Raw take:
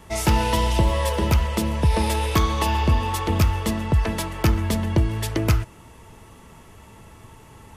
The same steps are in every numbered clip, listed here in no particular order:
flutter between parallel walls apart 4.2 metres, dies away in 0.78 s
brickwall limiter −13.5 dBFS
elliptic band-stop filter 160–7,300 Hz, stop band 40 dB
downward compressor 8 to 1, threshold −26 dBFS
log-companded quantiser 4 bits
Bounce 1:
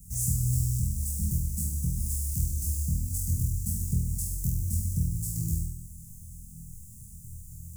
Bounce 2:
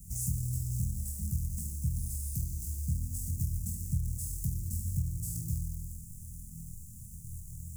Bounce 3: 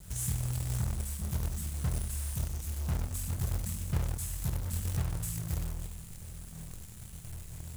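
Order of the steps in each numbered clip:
log-companded quantiser, then brickwall limiter, then elliptic band-stop filter, then downward compressor, then flutter between parallel walls
flutter between parallel walls, then log-companded quantiser, then downward compressor, then elliptic band-stop filter, then brickwall limiter
brickwall limiter, then flutter between parallel walls, then downward compressor, then elliptic band-stop filter, then log-companded quantiser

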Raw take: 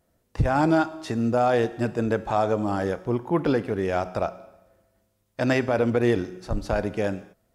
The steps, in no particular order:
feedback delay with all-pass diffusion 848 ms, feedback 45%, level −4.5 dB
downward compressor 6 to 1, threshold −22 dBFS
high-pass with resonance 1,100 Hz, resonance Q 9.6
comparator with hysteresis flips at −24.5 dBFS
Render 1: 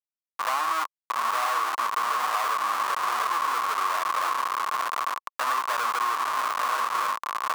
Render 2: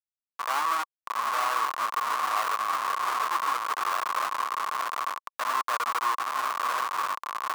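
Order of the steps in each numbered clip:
feedback delay with all-pass diffusion, then comparator with hysteresis, then high-pass with resonance, then downward compressor
feedback delay with all-pass diffusion, then downward compressor, then comparator with hysteresis, then high-pass with resonance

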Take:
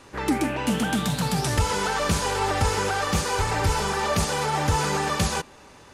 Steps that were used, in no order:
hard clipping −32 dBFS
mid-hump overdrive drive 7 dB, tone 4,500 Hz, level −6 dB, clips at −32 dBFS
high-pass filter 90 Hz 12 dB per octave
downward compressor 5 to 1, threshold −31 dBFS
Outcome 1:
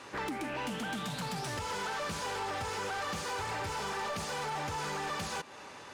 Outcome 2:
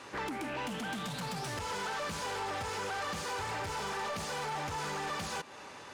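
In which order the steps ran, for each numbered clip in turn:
high-pass filter, then downward compressor, then mid-hump overdrive, then hard clipping
high-pass filter, then downward compressor, then hard clipping, then mid-hump overdrive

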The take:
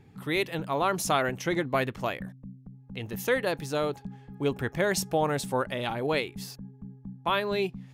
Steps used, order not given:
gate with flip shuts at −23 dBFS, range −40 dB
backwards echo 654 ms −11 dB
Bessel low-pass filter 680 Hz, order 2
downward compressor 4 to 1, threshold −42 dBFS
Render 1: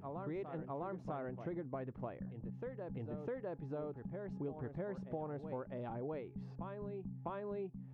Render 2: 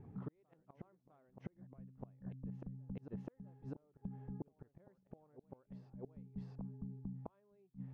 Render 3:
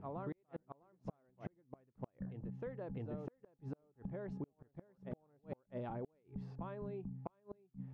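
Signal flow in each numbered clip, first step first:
Bessel low-pass filter, then backwards echo, then downward compressor, then gate with flip
gate with flip, then backwards echo, then downward compressor, then Bessel low-pass filter
backwards echo, then Bessel low-pass filter, then gate with flip, then downward compressor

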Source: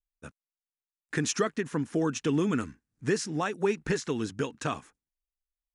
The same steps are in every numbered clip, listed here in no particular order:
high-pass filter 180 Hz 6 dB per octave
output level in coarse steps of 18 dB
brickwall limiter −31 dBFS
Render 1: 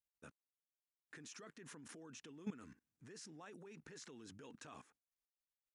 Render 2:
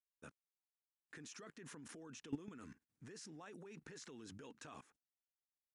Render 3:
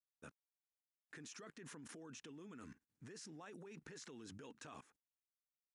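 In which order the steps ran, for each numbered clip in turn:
brickwall limiter, then output level in coarse steps, then high-pass filter
high-pass filter, then brickwall limiter, then output level in coarse steps
brickwall limiter, then high-pass filter, then output level in coarse steps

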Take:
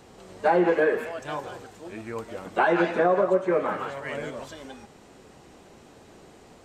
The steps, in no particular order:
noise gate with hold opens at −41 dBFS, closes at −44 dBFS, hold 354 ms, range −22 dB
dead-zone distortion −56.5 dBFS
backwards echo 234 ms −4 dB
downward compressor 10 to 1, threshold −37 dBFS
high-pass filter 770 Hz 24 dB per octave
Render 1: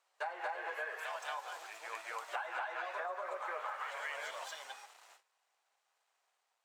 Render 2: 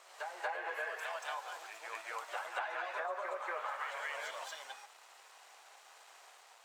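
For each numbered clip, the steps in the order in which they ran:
dead-zone distortion, then high-pass filter, then noise gate with hold, then backwards echo, then downward compressor
noise gate with hold, then dead-zone distortion, then high-pass filter, then downward compressor, then backwards echo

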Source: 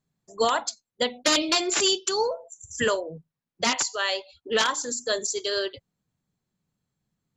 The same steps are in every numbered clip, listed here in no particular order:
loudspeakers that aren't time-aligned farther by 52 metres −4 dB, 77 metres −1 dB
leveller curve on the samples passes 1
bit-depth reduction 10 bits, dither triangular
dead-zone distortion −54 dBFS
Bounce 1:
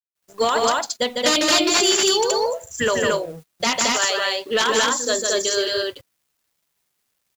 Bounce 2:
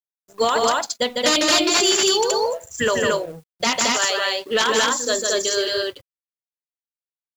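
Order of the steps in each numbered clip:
bit-depth reduction, then leveller curve on the samples, then loudspeakers that aren't time-aligned, then dead-zone distortion
bit-depth reduction, then dead-zone distortion, then loudspeakers that aren't time-aligned, then leveller curve on the samples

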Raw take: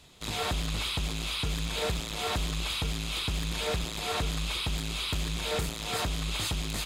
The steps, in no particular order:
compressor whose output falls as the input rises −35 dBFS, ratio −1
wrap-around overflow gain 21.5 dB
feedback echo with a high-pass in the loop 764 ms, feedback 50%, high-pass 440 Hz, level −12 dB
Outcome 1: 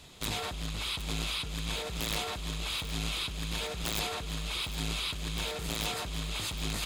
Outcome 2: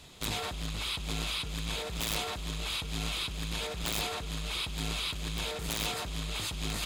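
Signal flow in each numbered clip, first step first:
compressor whose output falls as the input rises, then wrap-around overflow, then feedback echo with a high-pass in the loop
feedback echo with a high-pass in the loop, then compressor whose output falls as the input rises, then wrap-around overflow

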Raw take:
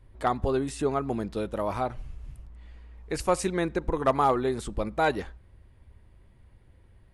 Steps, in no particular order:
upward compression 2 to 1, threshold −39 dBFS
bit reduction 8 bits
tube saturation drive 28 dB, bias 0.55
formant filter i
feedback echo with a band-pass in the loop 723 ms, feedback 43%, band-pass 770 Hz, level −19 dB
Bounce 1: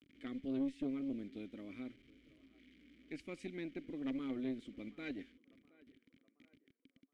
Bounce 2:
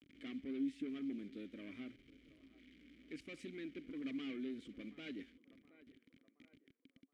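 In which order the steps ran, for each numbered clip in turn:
bit reduction, then feedback echo with a band-pass in the loop, then upward compression, then formant filter, then tube saturation
bit reduction, then feedback echo with a band-pass in the loop, then tube saturation, then upward compression, then formant filter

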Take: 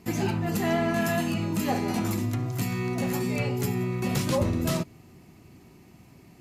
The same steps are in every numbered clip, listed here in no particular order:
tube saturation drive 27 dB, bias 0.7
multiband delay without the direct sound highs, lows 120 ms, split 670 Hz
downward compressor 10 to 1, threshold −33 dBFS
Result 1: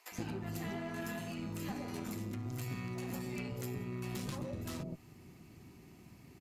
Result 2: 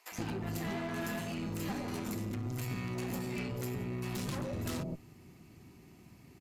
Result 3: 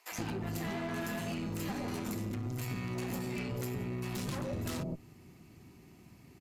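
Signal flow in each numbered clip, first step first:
downward compressor, then tube saturation, then multiband delay without the direct sound
tube saturation, then downward compressor, then multiband delay without the direct sound
tube saturation, then multiband delay without the direct sound, then downward compressor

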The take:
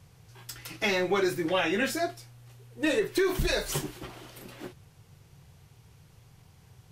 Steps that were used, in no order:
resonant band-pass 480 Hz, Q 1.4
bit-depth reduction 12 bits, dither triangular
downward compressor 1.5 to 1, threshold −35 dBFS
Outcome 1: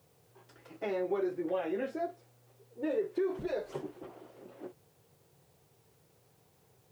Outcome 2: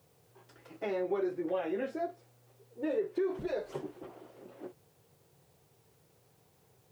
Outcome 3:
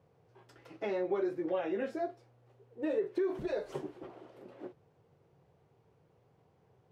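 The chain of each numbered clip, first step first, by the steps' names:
resonant band-pass, then downward compressor, then bit-depth reduction
resonant band-pass, then bit-depth reduction, then downward compressor
bit-depth reduction, then resonant band-pass, then downward compressor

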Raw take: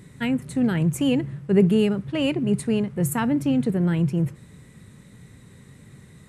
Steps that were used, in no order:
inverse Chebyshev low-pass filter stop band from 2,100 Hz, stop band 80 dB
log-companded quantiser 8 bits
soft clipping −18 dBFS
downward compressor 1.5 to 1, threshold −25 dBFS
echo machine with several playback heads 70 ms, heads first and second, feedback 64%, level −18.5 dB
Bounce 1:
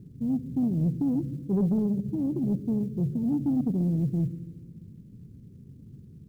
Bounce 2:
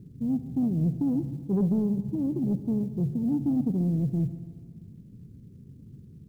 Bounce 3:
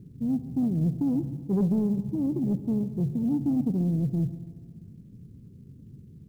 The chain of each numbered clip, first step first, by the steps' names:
downward compressor, then inverse Chebyshev low-pass filter, then log-companded quantiser, then echo machine with several playback heads, then soft clipping
downward compressor, then inverse Chebyshev low-pass filter, then log-companded quantiser, then soft clipping, then echo machine with several playback heads
inverse Chebyshev low-pass filter, then downward compressor, then soft clipping, then echo machine with several playback heads, then log-companded quantiser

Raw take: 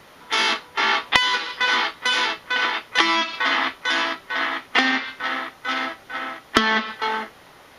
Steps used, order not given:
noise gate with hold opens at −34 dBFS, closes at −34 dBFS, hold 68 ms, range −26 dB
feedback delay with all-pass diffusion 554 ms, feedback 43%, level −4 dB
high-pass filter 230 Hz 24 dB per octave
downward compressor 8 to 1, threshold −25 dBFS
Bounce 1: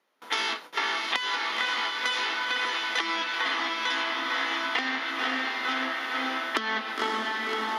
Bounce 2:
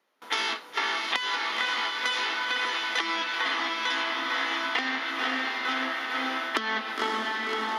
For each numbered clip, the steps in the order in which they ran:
feedback delay with all-pass diffusion, then downward compressor, then noise gate with hold, then high-pass filter
noise gate with hold, then feedback delay with all-pass diffusion, then downward compressor, then high-pass filter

